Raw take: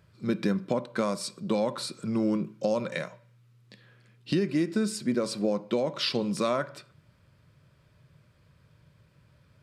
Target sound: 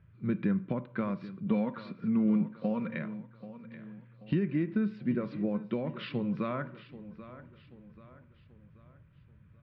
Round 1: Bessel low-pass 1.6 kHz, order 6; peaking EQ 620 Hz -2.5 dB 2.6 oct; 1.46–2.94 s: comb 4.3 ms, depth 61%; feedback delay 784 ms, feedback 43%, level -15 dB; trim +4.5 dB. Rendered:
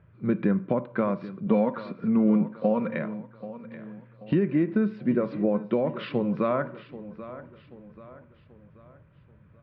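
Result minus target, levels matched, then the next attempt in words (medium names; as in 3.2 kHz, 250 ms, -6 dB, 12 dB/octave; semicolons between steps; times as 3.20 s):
500 Hz band +4.0 dB
Bessel low-pass 1.6 kHz, order 6; peaking EQ 620 Hz -14 dB 2.6 oct; 1.46–2.94 s: comb 4.3 ms, depth 61%; feedback delay 784 ms, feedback 43%, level -15 dB; trim +4.5 dB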